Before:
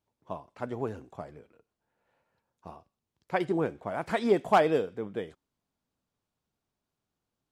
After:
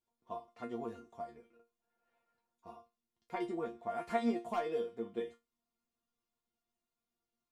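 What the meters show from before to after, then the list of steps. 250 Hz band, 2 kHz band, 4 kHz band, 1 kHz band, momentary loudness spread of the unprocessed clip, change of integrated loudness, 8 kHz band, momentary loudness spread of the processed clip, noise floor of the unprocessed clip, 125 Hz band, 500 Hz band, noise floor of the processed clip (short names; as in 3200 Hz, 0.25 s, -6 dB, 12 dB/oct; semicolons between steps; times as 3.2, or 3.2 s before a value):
-6.5 dB, -12.5 dB, -11.0 dB, -9.5 dB, 20 LU, -10.5 dB, n/a, 21 LU, under -85 dBFS, -16.5 dB, -10.0 dB, under -85 dBFS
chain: notch 1600 Hz, Q 14; compressor 3:1, threshold -28 dBFS, peak gain reduction 9 dB; resonator bank A#3 fifth, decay 0.2 s; gain +8 dB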